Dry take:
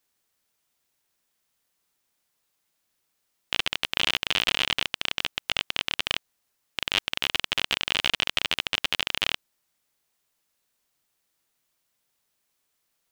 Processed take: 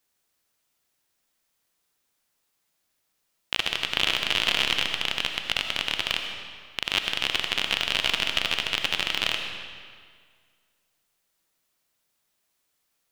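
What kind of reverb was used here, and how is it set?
digital reverb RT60 1.9 s, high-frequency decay 0.85×, pre-delay 40 ms, DRR 4.5 dB

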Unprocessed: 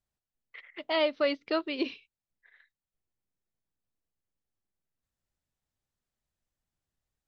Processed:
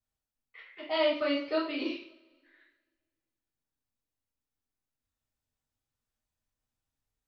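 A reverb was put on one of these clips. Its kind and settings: two-slope reverb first 0.51 s, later 1.8 s, from -24 dB, DRR -8 dB; gain -9.5 dB

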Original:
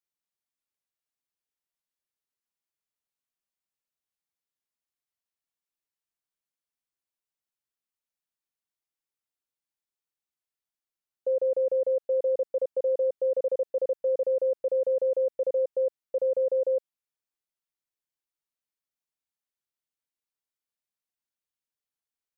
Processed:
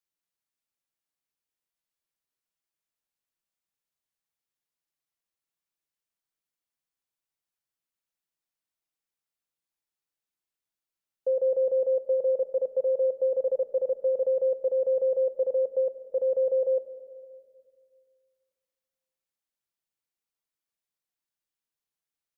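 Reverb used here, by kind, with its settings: shoebox room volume 3300 m³, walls mixed, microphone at 0.69 m

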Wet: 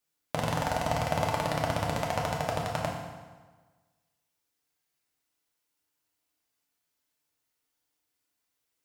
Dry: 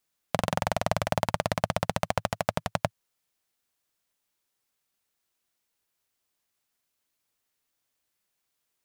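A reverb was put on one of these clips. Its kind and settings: FDN reverb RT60 1.4 s, low-frequency decay 1×, high-frequency decay 0.8×, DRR -2.5 dB; gain -5.5 dB

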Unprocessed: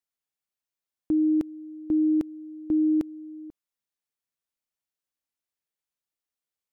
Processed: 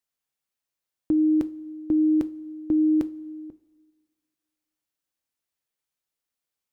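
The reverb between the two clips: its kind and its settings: two-slope reverb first 0.26 s, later 1.8 s, from -18 dB, DRR 11 dB; gain +3 dB

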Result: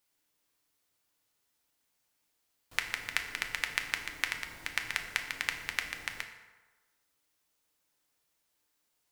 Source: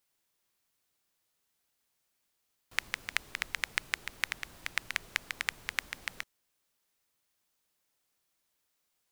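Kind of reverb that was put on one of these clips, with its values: FDN reverb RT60 1.3 s, low-frequency decay 0.8×, high-frequency decay 0.6×, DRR 4 dB

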